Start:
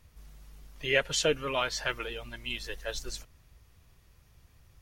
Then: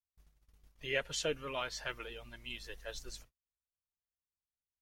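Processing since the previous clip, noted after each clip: gate -48 dBFS, range -40 dB; trim -8.5 dB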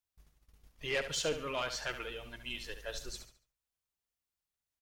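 saturation -29.5 dBFS, distortion -13 dB; on a send: feedback delay 71 ms, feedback 34%, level -10 dB; on the sum: trim +3.5 dB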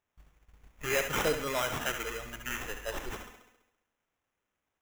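feedback echo behind a high-pass 67 ms, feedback 61%, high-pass 1.7 kHz, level -7.5 dB; sample-rate reducer 4.5 kHz, jitter 0%; trim +4.5 dB

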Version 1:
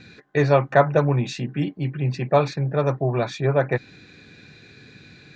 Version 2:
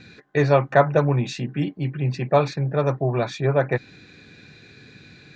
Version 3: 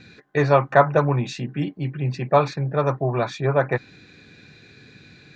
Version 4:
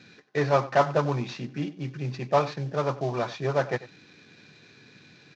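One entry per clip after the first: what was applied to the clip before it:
no audible change
dynamic bell 1.1 kHz, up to +6 dB, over -35 dBFS, Q 1.4; trim -1 dB
CVSD coder 32 kbps; high-pass 130 Hz; echo from a far wall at 16 m, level -17 dB; trim -4.5 dB

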